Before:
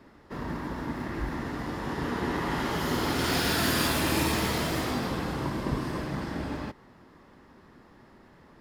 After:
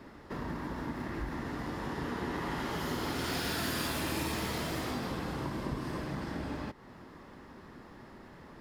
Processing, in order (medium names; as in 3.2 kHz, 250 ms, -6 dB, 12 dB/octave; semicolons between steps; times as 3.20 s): compression 2:1, threshold -44 dBFS, peak gain reduction 12 dB; trim +3.5 dB